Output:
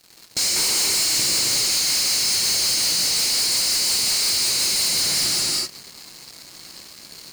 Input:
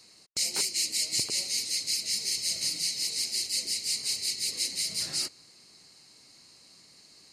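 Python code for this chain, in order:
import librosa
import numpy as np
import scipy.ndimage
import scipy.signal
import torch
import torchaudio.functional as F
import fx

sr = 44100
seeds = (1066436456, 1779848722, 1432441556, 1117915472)

y = fx.rev_gated(x, sr, seeds[0], gate_ms=420, shape='flat', drr_db=-4.5)
y = fx.leveller(y, sr, passes=5)
y = y * librosa.db_to_amplitude(-5.5)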